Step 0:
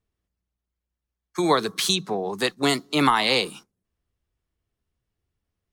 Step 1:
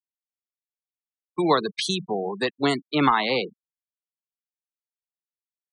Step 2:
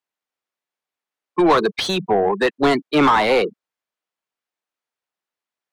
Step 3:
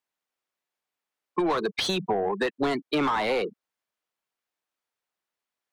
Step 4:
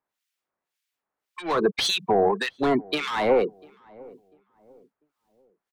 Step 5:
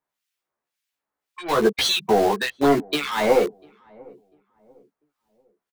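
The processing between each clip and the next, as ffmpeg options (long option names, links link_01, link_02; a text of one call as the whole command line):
ffmpeg -i in.wav -filter_complex "[0:a]afftfilt=real='re*gte(hypot(re,im),0.0631)':imag='im*gte(hypot(re,im),0.0631)':win_size=1024:overlap=0.75,acrossover=split=2200[link_01][link_02];[link_02]alimiter=limit=-18dB:level=0:latency=1:release=298[link_03];[link_01][link_03]amix=inputs=2:normalize=0" out.wav
ffmpeg -i in.wav -filter_complex "[0:a]asplit=2[link_01][link_02];[link_02]highpass=frequency=720:poles=1,volume=24dB,asoftclip=type=tanh:threshold=-4.5dB[link_03];[link_01][link_03]amix=inputs=2:normalize=0,lowpass=frequency=1200:poles=1,volume=-6dB" out.wav
ffmpeg -i in.wav -af "acompressor=threshold=-24dB:ratio=5" out.wav
ffmpeg -i in.wav -filter_complex "[0:a]acrossover=split=1700[link_01][link_02];[link_01]aeval=exprs='val(0)*(1-1/2+1/2*cos(2*PI*1.8*n/s))':channel_layout=same[link_03];[link_02]aeval=exprs='val(0)*(1-1/2-1/2*cos(2*PI*1.8*n/s))':channel_layout=same[link_04];[link_03][link_04]amix=inputs=2:normalize=0,asplit=2[link_05][link_06];[link_06]adelay=695,lowpass=frequency=840:poles=1,volume=-22.5dB,asplit=2[link_07][link_08];[link_08]adelay=695,lowpass=frequency=840:poles=1,volume=0.39,asplit=2[link_09][link_10];[link_10]adelay=695,lowpass=frequency=840:poles=1,volume=0.39[link_11];[link_05][link_07][link_09][link_11]amix=inputs=4:normalize=0,volume=7.5dB" out.wav
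ffmpeg -i in.wav -filter_complex "[0:a]asplit=2[link_01][link_02];[link_02]acrusher=bits=3:mix=0:aa=0.000001,volume=-9dB[link_03];[link_01][link_03]amix=inputs=2:normalize=0,asplit=2[link_04][link_05];[link_05]adelay=14,volume=-2.5dB[link_06];[link_04][link_06]amix=inputs=2:normalize=0,volume=-1.5dB" out.wav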